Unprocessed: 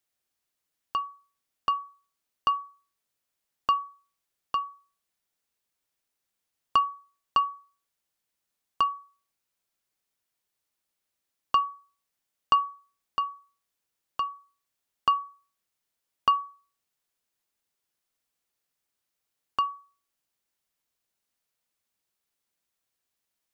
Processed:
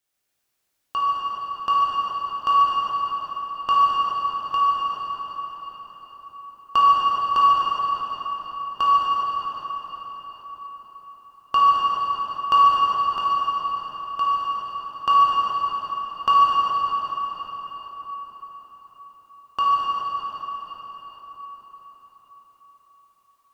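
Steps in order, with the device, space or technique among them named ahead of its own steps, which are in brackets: cathedral (reverberation RT60 5.5 s, pre-delay 11 ms, DRR -9 dB)

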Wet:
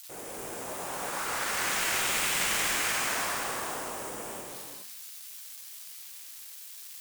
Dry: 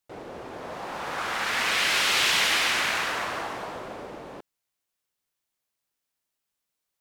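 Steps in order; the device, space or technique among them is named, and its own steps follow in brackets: hum notches 50/100/150/200/250 Hz; budget class-D amplifier (dead-time distortion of 0.12 ms; zero-crossing glitches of -22.5 dBFS); gated-style reverb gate 450 ms flat, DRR -0.5 dB; trim -5.5 dB

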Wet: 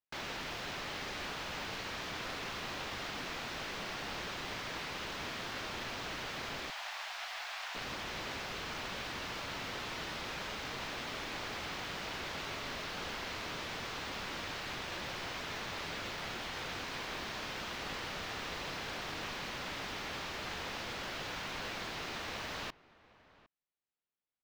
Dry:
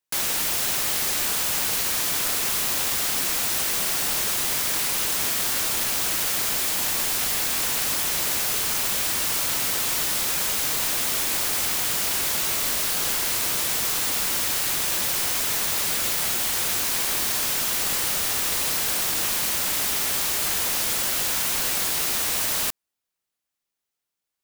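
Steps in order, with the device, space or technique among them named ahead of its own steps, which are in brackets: shout across a valley (distance through air 230 m; echo from a far wall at 130 m, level -20 dB); 6.70–7.75 s: elliptic high-pass 670 Hz, stop band 80 dB; trim -7.5 dB

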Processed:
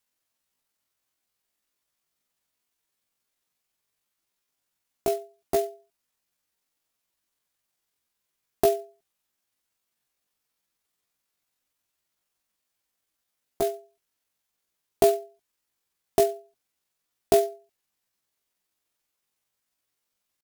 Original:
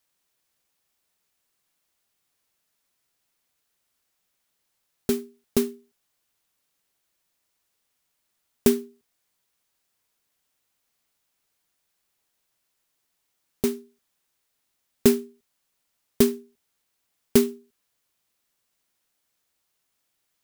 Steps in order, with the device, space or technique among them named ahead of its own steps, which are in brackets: chipmunk voice (pitch shift +9 st); trim -2 dB

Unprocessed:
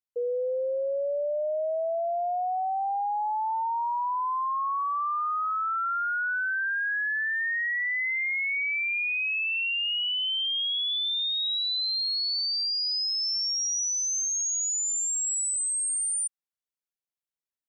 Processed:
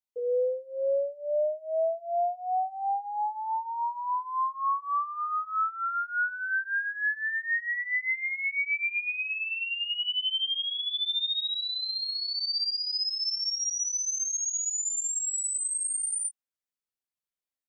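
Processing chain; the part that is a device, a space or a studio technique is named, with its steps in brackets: double-tracked vocal (doubling 20 ms -6 dB; chorus 0.12 Hz, delay 16 ms, depth 2.3 ms); 7.95–8.83 s: low-pass 7.4 kHz 24 dB/octave

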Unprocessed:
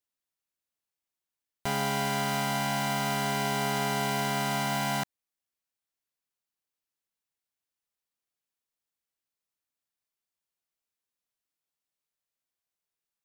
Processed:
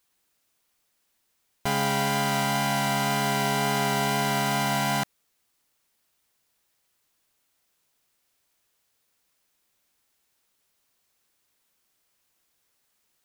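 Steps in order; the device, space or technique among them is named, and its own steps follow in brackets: plain cassette with noise reduction switched in (tape noise reduction on one side only decoder only; wow and flutter 9.7 cents; white noise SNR 42 dB); trim +4 dB

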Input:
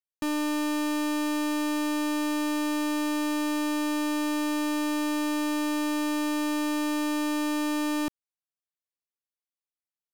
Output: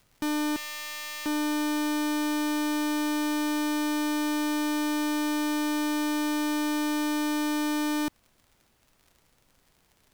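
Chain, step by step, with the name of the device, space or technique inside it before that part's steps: peaking EQ 11 kHz +5.5 dB 1.3 oct; 0.56–1.26 s: high-pass 1.5 kHz 24 dB/octave; record under a worn stylus (tracing distortion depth 0.036 ms; crackle; pink noise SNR 38 dB)

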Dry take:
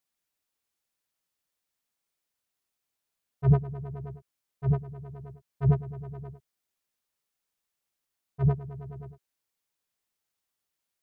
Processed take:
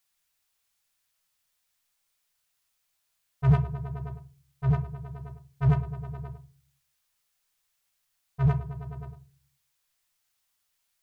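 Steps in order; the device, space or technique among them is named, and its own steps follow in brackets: parallel distortion (in parallel at -4 dB: hard clipper -26 dBFS, distortion -6 dB); on the sum: peaking EQ 310 Hz -12.5 dB 2.1 oct; simulated room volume 210 m³, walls furnished, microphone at 0.52 m; trim +4 dB

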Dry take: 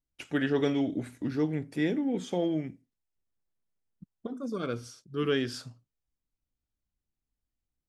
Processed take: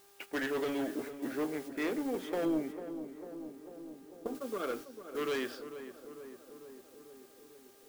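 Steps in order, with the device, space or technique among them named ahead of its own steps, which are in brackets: high-pass 170 Hz 12 dB/octave; aircraft radio (band-pass 400–2700 Hz; hard clipper -32 dBFS, distortion -9 dB; mains buzz 400 Hz, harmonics 4, -58 dBFS -6 dB/octave; white noise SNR 15 dB; gate -46 dBFS, range -9 dB); 2.45–4.35 s: tilt shelf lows +5 dB; filtered feedback delay 447 ms, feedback 72%, low-pass 1.4 kHz, level -10.5 dB; trim +1.5 dB

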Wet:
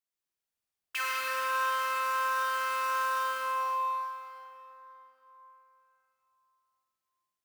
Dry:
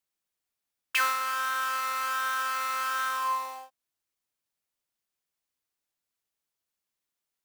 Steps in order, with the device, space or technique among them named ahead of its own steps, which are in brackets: tunnel (flutter echo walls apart 8.2 m, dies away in 0.46 s; reverberation RT60 3.7 s, pre-delay 82 ms, DRR -2.5 dB); trim -8.5 dB

